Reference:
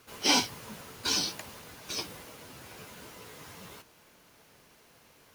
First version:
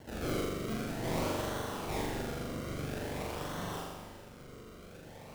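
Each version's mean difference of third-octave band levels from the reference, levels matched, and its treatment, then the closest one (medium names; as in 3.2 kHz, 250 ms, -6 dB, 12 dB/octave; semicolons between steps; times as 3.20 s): 9.0 dB: compression, threshold -34 dBFS, peak gain reduction 13.5 dB; decimation with a swept rate 35×, swing 100% 0.49 Hz; hard clipper -40 dBFS, distortion -7 dB; flutter echo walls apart 7.1 m, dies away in 1.3 s; trim +5.5 dB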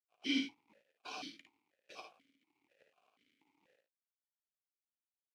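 19.0 dB: gain riding within 4 dB 2 s; crossover distortion -44 dBFS; early reflections 55 ms -6.5 dB, 73 ms -10 dB; stepped vowel filter 4.1 Hz; trim +3.5 dB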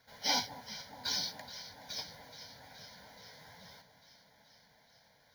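5.0 dB: median filter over 3 samples; bass shelf 91 Hz -8.5 dB; static phaser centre 1.8 kHz, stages 8; echo whose repeats swap between lows and highs 212 ms, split 1.1 kHz, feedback 84%, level -13 dB; trim -3.5 dB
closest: third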